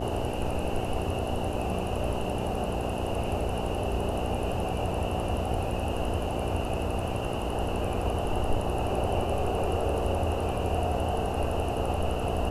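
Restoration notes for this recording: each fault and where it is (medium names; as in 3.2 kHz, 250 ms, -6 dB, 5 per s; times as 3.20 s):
buzz 60 Hz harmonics 11 -34 dBFS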